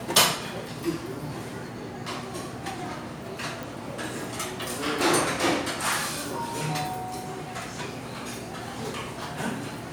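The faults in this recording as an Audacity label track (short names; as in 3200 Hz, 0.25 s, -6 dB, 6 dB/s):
3.630000	3.630000	pop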